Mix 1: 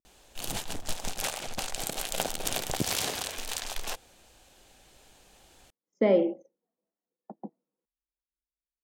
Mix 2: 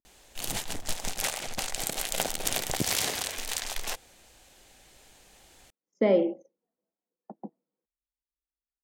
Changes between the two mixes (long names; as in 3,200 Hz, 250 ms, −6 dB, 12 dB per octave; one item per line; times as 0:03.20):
background: add parametric band 2,000 Hz +5 dB 0.39 octaves
master: add bass and treble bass 0 dB, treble +3 dB